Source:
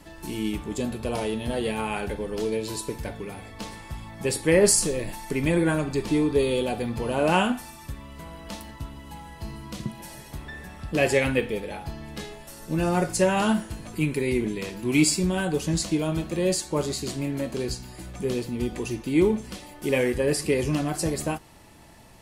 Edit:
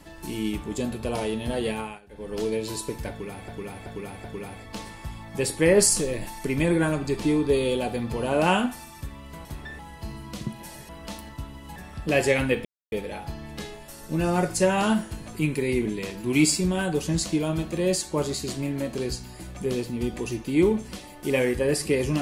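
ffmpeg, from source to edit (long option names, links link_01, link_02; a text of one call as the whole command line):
ffmpeg -i in.wav -filter_complex "[0:a]asplit=11[link_01][link_02][link_03][link_04][link_05][link_06][link_07][link_08][link_09][link_10][link_11];[link_01]atrim=end=2,asetpts=PTS-STARTPTS,afade=type=out:start_time=1.71:duration=0.29:silence=0.0707946[link_12];[link_02]atrim=start=2:end=2.09,asetpts=PTS-STARTPTS,volume=-23dB[link_13];[link_03]atrim=start=2.09:end=3.482,asetpts=PTS-STARTPTS,afade=type=in:duration=0.29:silence=0.0707946[link_14];[link_04]atrim=start=3.098:end=3.482[link_15];[link_05]atrim=start=3.098:end=3.482[link_16];[link_06]atrim=start=3.098:end=8.312[link_17];[link_07]atrim=start=10.278:end=10.622[link_18];[link_08]atrim=start=9.178:end=10.282[link_19];[link_09]atrim=start=8.308:end=9.182[link_20];[link_10]atrim=start=10.618:end=11.51,asetpts=PTS-STARTPTS,afade=type=out:start_time=0.888:duration=0.004:curve=hsin,apad=pad_dur=0.27[link_21];[link_11]atrim=start=11.51,asetpts=PTS-STARTPTS,afade=type=in:duration=0.004:curve=hsin[link_22];[link_12][link_13][link_14]concat=n=3:v=0:a=1[link_23];[link_23][link_15]acrossfade=duration=0.004:curve1=hsin:curve2=hsin[link_24];[link_24][link_16]acrossfade=duration=0.004:curve1=hsin:curve2=hsin[link_25];[link_25][link_17]acrossfade=duration=0.004:curve1=hsin:curve2=hsin[link_26];[link_26][link_18]acrossfade=duration=0.004:curve1=hsin:curve2=hsin[link_27];[link_27][link_19]acrossfade=duration=0.004:curve1=hsin:curve2=hsin[link_28];[link_28][link_20]acrossfade=duration=0.004:curve1=hsin:curve2=hsin[link_29];[link_21][link_22]concat=n=2:v=0:a=1[link_30];[link_29][link_30]acrossfade=duration=0.004:curve1=hsin:curve2=hsin" out.wav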